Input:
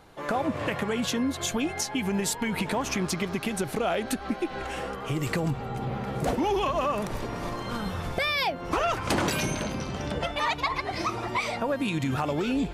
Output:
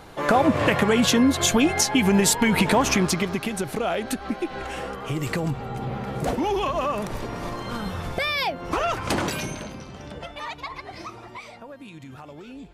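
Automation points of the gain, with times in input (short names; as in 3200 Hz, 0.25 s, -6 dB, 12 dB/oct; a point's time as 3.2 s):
2.85 s +9 dB
3.51 s +1.5 dB
9.12 s +1.5 dB
9.86 s -7 dB
10.92 s -7 dB
11.7 s -14 dB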